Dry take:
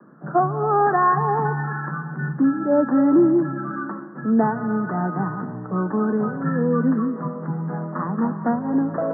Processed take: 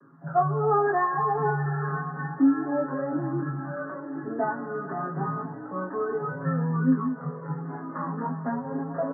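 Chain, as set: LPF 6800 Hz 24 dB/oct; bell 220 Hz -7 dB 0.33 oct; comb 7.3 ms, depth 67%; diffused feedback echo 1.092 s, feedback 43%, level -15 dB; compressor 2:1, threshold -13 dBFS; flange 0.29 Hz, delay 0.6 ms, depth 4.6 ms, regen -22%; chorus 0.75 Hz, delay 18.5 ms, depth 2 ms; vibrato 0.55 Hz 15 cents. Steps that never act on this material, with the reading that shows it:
LPF 6800 Hz: input band ends at 1700 Hz

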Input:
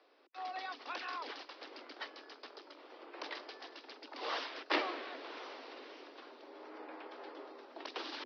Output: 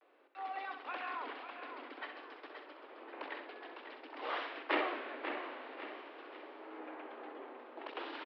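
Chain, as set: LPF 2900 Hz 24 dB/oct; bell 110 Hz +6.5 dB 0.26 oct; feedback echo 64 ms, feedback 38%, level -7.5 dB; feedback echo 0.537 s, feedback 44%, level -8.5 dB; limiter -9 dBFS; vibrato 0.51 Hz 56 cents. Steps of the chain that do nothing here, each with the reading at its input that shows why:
bell 110 Hz: input band starts at 210 Hz; limiter -9 dBFS: input peak -17.5 dBFS

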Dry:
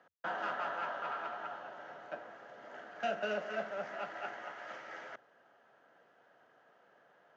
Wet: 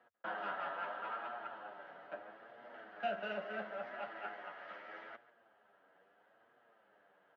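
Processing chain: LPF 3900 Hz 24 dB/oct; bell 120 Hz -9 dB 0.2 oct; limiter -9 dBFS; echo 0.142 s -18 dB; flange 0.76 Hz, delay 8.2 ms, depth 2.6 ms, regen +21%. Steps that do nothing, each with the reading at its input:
limiter -9 dBFS: input peak -23.5 dBFS

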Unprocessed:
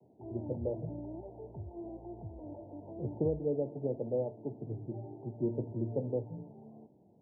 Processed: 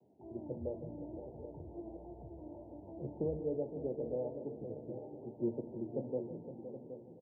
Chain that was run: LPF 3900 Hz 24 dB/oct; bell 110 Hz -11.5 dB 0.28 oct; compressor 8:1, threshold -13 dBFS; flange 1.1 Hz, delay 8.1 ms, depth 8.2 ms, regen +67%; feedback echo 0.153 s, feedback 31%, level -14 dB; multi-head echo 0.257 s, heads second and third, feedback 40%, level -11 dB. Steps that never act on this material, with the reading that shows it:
LPF 3900 Hz: input band ends at 910 Hz; compressor, threshold -13 dBFS: input peak -20.0 dBFS

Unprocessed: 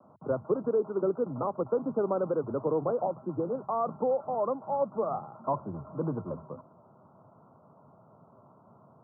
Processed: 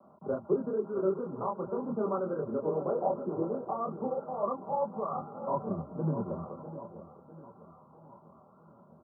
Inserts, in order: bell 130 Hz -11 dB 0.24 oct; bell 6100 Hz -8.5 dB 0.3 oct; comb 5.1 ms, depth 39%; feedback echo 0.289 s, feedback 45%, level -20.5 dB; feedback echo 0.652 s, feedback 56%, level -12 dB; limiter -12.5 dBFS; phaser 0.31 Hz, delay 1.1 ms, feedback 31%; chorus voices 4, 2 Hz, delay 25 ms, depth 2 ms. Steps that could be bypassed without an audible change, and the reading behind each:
bell 6100 Hz: input band ends at 1400 Hz; limiter -12.5 dBFS: input peak -14.5 dBFS

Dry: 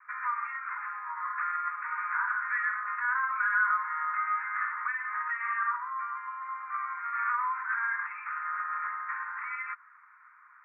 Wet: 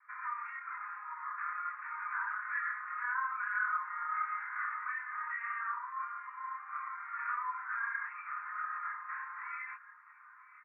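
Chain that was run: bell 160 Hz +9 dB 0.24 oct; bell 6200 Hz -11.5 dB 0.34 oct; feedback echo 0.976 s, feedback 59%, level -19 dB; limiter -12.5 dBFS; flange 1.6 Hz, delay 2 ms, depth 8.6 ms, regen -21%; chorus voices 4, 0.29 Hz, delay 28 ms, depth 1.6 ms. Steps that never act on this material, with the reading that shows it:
bell 160 Hz: input band starts at 810 Hz; bell 6200 Hz: input band ends at 2400 Hz; limiter -12.5 dBFS: input peak -16.5 dBFS

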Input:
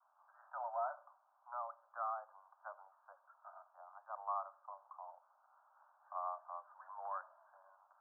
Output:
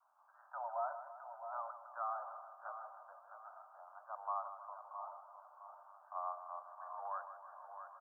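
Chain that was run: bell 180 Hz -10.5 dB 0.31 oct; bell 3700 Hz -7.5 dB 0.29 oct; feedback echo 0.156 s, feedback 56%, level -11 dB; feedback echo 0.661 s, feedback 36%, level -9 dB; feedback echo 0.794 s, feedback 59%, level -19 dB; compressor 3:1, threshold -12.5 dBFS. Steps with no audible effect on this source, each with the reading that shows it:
bell 180 Hz: input band starts at 480 Hz; bell 3700 Hz: input band ends at 1600 Hz; compressor, threshold -12.5 dBFS: input peak -27.5 dBFS

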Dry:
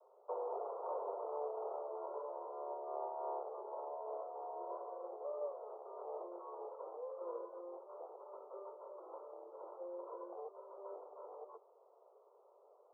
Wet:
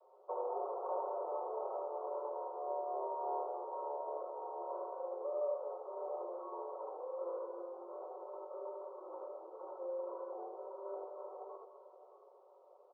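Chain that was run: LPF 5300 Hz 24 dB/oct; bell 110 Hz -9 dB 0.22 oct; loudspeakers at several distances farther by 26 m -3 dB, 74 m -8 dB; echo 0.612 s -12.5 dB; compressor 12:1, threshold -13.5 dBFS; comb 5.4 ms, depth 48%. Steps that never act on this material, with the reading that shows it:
LPF 5300 Hz: input band ends at 1400 Hz; bell 110 Hz: input band starts at 320 Hz; compressor, threshold -13.5 dBFS: input peak -28.0 dBFS

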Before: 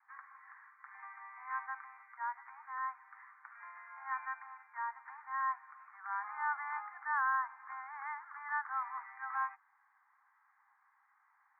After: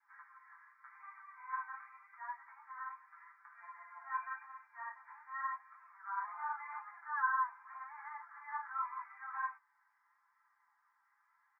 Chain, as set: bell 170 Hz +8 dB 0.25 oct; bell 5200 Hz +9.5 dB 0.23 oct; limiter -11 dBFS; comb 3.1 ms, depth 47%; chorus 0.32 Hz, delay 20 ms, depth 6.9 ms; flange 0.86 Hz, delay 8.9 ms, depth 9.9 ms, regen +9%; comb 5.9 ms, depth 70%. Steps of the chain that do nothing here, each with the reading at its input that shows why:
bell 170 Hz: input band starts at 760 Hz; bell 5200 Hz: input band ends at 2200 Hz; limiter -11 dBFS: input peak -22.5 dBFS

